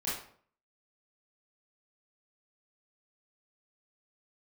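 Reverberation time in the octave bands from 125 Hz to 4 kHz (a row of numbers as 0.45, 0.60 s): 0.60, 0.60, 0.55, 0.50, 0.45, 0.40 s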